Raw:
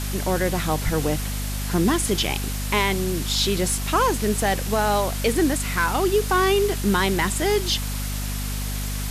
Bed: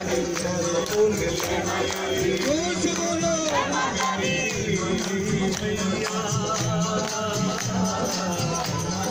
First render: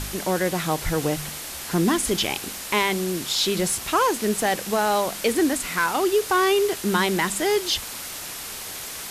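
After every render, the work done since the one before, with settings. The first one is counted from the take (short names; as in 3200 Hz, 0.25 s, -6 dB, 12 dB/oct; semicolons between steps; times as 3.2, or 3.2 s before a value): de-hum 50 Hz, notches 5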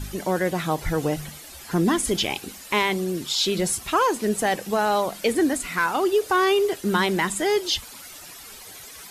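denoiser 12 dB, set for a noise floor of -35 dBFS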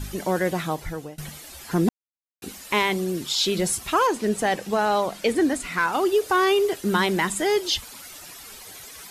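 0.53–1.18 fade out, to -24 dB; 1.89–2.42 mute; 4.07–5.93 high shelf 11000 Hz -11 dB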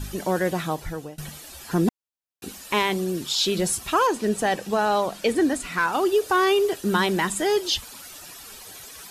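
notch 2100 Hz, Q 13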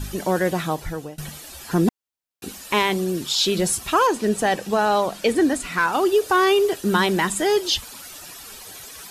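gain +2.5 dB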